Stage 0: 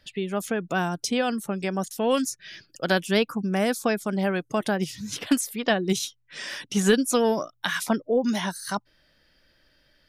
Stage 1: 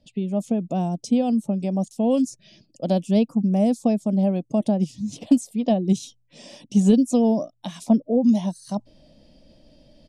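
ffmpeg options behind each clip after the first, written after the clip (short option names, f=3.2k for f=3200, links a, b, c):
-af "firequalizer=gain_entry='entry(100,0);entry(230,9);entry(390,-4);entry(610,4);entry(1500,-27);entry(2500,-11);entry(8000,-5);entry(14000,-23)':delay=0.05:min_phase=1,areverse,acompressor=mode=upward:threshold=-40dB:ratio=2.5,areverse"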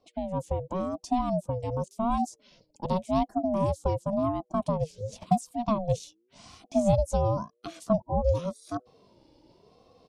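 -af "aeval=exprs='val(0)*sin(2*PI*400*n/s+400*0.25/0.91*sin(2*PI*0.91*n/s))':c=same,volume=-4dB"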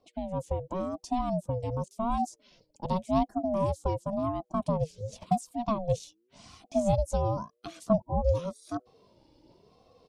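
-af "aphaser=in_gain=1:out_gain=1:delay=3.3:decay=0.23:speed=0.63:type=triangular,volume=-2dB"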